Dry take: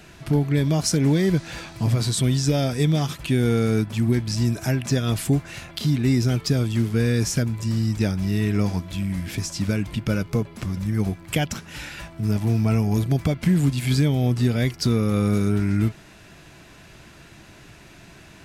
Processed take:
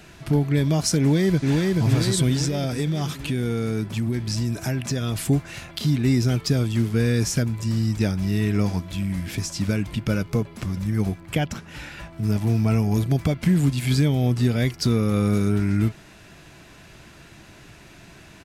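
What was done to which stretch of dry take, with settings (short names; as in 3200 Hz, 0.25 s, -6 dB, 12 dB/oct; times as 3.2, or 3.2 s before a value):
0.99–1.71 echo throw 0.43 s, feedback 60%, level -2 dB
2.44–5.22 compressor, threshold -20 dBFS
11.2–12.13 high shelf 3200 Hz -7.5 dB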